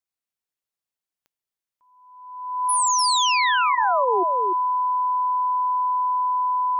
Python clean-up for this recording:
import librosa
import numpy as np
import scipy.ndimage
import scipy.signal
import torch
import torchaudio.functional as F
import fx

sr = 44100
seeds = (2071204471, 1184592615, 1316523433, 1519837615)

y = fx.fix_declick_ar(x, sr, threshold=10.0)
y = fx.notch(y, sr, hz=1000.0, q=30.0)
y = fx.fix_echo_inverse(y, sr, delay_ms=297, level_db=-6.0)